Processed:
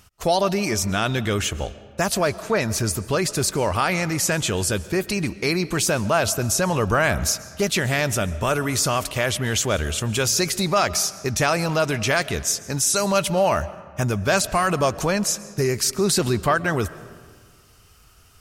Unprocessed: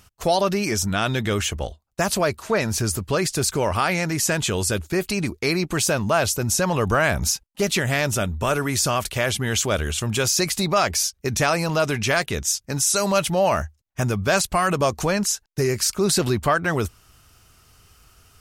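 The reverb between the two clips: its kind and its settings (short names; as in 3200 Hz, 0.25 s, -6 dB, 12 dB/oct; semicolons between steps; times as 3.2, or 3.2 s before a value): digital reverb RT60 1.7 s, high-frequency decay 0.6×, pre-delay 90 ms, DRR 16.5 dB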